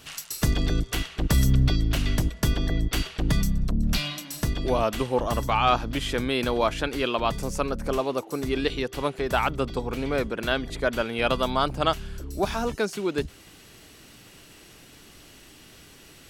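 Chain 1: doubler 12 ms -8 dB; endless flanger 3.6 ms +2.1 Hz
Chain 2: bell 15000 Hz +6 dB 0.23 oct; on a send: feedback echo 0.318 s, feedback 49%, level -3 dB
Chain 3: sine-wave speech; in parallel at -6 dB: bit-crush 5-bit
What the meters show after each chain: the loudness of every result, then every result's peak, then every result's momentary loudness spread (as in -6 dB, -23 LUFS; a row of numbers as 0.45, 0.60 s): -28.5, -24.0, -21.5 LUFS; -9.5, -5.5, -2.0 dBFS; 6, 6, 11 LU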